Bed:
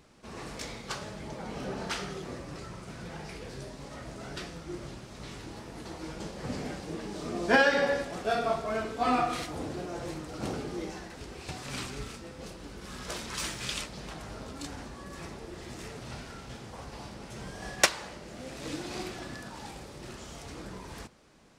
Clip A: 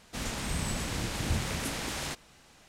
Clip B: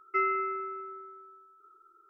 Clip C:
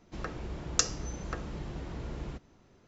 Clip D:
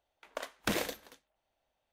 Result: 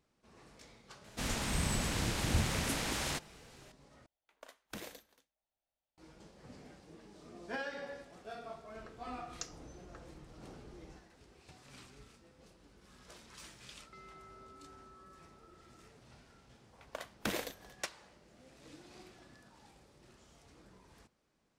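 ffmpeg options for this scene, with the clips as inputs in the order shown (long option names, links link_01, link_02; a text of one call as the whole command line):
ffmpeg -i bed.wav -i cue0.wav -i cue1.wav -i cue2.wav -i cue3.wav -filter_complex "[4:a]asplit=2[link_01][link_02];[0:a]volume=-18dB[link_03];[link_01]bass=frequency=250:gain=2,treble=frequency=4000:gain=3[link_04];[2:a]acompressor=threshold=-49dB:ratio=6:attack=3.2:release=140:knee=1:detection=peak[link_05];[link_03]asplit=2[link_06][link_07];[link_06]atrim=end=4.064[link_08];[link_04]atrim=end=1.92,asetpts=PTS-STARTPTS,volume=-15dB[link_09];[link_07]atrim=start=5.976[link_10];[1:a]atrim=end=2.68,asetpts=PTS-STARTPTS,volume=-1dB,afade=type=in:duration=0.004:curve=hsin,afade=type=out:start_time=2.676:duration=0.004:curve=hsin,adelay=1040[link_11];[3:a]atrim=end=2.87,asetpts=PTS-STARTPTS,volume=-17.5dB,afade=type=in:duration=0.004:curve=hsin,afade=type=out:start_time=2.866:duration=0.004:curve=hsin,adelay=8620[link_12];[link_05]atrim=end=2.09,asetpts=PTS-STARTPTS,volume=-6dB,afade=type=in:duration=0.004:curve=hsin,afade=type=out:start_time=2.086:duration=0.004:curve=hsin,adelay=13790[link_13];[link_02]atrim=end=1.92,asetpts=PTS-STARTPTS,volume=-4.5dB,afade=type=in:duration=0.004:curve=hsin,afade=type=out:start_time=1.916:duration=0.004:curve=hsin,adelay=16580[link_14];[link_08][link_09]acrossfade=duration=0.004:curve1=hsin:curve2=hsin[link_15];[link_15][link_10]acrossfade=duration=0.004:curve1=hsin:curve2=hsin[link_16];[link_16][link_11][link_12][link_13][link_14]amix=inputs=5:normalize=0" out.wav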